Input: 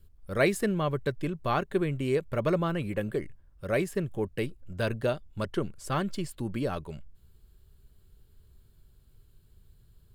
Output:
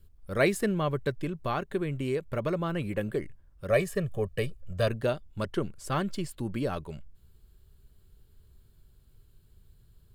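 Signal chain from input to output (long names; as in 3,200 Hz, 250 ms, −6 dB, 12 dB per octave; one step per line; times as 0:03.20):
0:01.18–0:02.76: downward compressor 2 to 1, threshold −28 dBFS, peak gain reduction 4 dB
0:03.70–0:04.88: comb filter 1.7 ms, depth 75%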